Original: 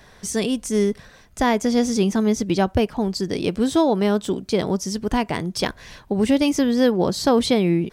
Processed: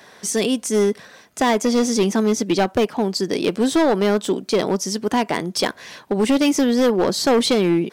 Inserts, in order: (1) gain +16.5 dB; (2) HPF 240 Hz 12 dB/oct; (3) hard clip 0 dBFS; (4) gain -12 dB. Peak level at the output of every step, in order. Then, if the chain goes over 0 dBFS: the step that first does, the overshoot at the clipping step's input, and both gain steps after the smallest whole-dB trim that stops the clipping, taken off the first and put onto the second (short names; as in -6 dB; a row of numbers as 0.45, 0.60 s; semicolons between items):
+12.0, +9.0, 0.0, -12.0 dBFS; step 1, 9.0 dB; step 1 +7.5 dB, step 4 -3 dB